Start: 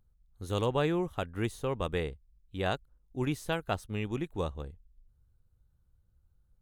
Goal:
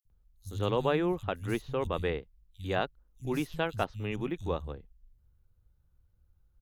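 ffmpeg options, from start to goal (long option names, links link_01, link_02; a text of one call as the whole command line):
ffmpeg -i in.wav -filter_complex "[0:a]equalizer=frequency=8400:width_type=o:width=0.47:gain=-8.5,acrossover=split=150|4700[link_01][link_02][link_03];[link_01]adelay=50[link_04];[link_02]adelay=100[link_05];[link_04][link_05][link_03]amix=inputs=3:normalize=0,volume=1.5dB" out.wav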